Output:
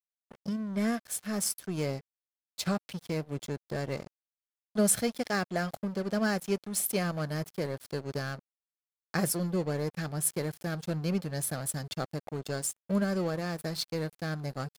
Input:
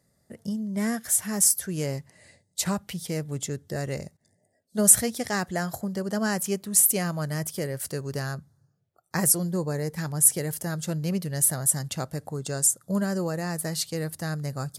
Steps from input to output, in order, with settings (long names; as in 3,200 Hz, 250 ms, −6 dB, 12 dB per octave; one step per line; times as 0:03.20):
high shelf with overshoot 5,600 Hz −7.5 dB, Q 1.5
notch comb filter 950 Hz
dead-zone distortion −40 dBFS